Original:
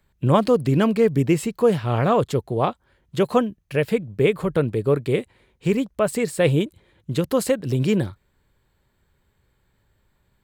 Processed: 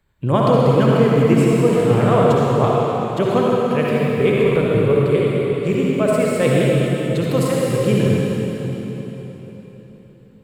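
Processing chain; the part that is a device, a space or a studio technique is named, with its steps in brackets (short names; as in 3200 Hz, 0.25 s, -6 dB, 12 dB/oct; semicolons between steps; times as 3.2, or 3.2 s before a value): swimming-pool hall (reverb RT60 4.0 s, pre-delay 53 ms, DRR -5 dB; high shelf 5400 Hz -4 dB); gain -1 dB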